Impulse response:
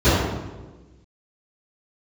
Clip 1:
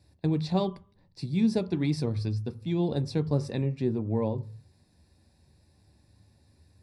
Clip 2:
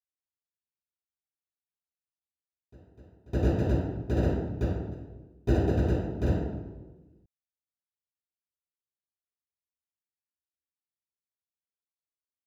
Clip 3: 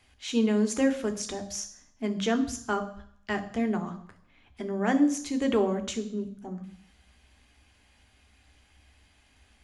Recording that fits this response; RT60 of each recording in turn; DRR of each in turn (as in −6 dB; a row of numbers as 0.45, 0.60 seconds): 2; 0.45, 1.3, 0.60 seconds; 9.5, −19.0, 7.0 decibels